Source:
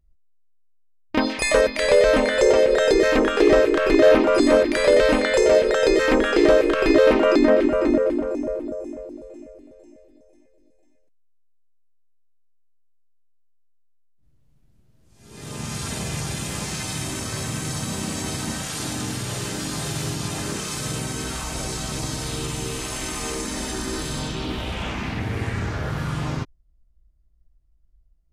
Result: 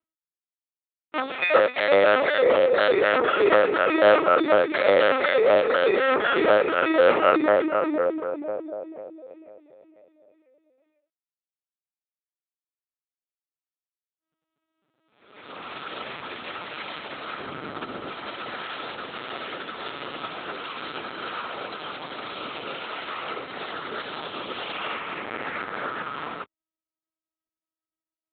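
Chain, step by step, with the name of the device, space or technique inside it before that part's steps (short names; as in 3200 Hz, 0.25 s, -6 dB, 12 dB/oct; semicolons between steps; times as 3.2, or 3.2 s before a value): 17.41–18.09 tilt -2.5 dB/oct; talking toy (LPC vocoder at 8 kHz pitch kept; HPF 430 Hz 12 dB/oct; bell 1300 Hz +9 dB 0.21 oct)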